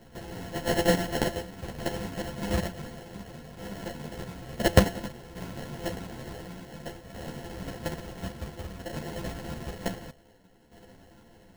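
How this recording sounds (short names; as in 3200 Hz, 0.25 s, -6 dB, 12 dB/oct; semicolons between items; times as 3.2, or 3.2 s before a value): a buzz of ramps at a fixed pitch in blocks of 64 samples; tremolo saw down 0.56 Hz, depth 65%; aliases and images of a low sample rate 1200 Hz, jitter 0%; a shimmering, thickened sound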